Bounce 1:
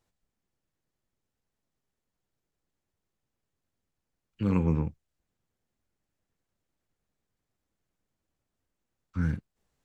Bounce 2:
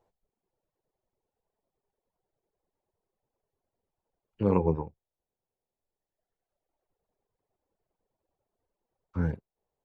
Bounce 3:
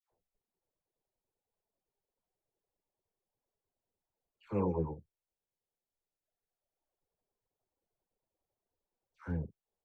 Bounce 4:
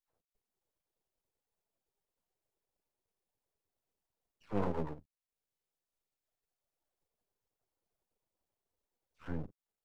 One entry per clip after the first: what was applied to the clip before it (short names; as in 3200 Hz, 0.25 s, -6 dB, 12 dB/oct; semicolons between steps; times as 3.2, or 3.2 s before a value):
high shelf 3000 Hz -11.5 dB; reverb removal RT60 1.9 s; band shelf 610 Hz +11 dB
dispersion lows, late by 0.12 s, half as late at 1200 Hz; gain -7.5 dB
half-wave rectifier; gain +2 dB